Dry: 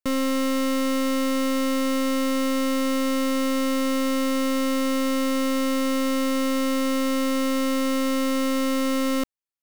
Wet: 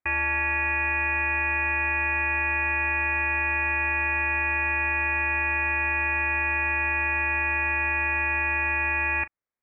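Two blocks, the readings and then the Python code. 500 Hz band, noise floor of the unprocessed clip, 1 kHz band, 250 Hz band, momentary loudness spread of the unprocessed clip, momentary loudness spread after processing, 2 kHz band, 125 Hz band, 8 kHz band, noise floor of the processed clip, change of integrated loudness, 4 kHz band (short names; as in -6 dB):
-14.0 dB, -23 dBFS, +0.5 dB, -19.5 dB, 0 LU, 0 LU, +12.5 dB, n/a, under -40 dB, -26 dBFS, +0.5 dB, under -20 dB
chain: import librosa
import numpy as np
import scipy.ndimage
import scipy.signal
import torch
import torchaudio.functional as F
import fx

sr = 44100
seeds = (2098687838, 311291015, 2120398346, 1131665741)

y = scipy.signal.sosfilt(scipy.signal.butter(4, 570.0, 'highpass', fs=sr, output='sos'), x)
y = fx.room_early_taps(y, sr, ms=(11, 39), db=(-15.5, -17.0))
y = fx.freq_invert(y, sr, carrier_hz=3000)
y = F.gain(torch.from_numpy(y), 5.5).numpy()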